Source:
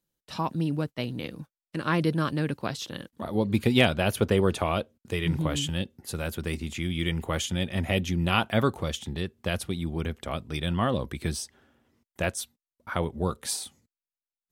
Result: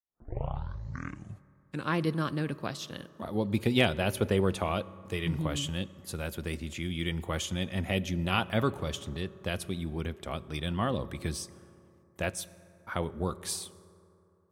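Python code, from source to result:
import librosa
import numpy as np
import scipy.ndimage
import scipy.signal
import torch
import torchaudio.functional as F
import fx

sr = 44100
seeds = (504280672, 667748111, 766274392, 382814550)

y = fx.tape_start_head(x, sr, length_s=1.91)
y = fx.rev_fdn(y, sr, rt60_s=2.9, lf_ratio=1.0, hf_ratio=0.4, size_ms=16.0, drr_db=17.0)
y = y * librosa.db_to_amplitude(-4.0)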